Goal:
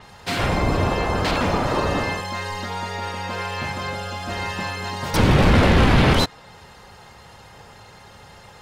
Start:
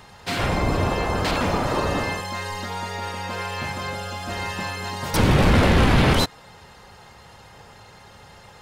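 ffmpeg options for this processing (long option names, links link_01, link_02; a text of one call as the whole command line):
ffmpeg -i in.wav -af "adynamicequalizer=threshold=0.00562:dfrequency=7000:dqfactor=0.7:tfrequency=7000:tqfactor=0.7:attack=5:release=100:ratio=0.375:range=2.5:mode=cutabove:tftype=highshelf,volume=1.5dB" out.wav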